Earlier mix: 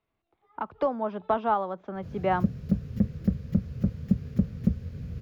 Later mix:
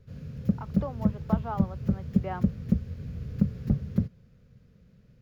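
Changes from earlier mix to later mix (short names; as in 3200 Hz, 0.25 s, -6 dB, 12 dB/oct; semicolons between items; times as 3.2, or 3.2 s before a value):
speech -10.0 dB; background: entry -1.95 s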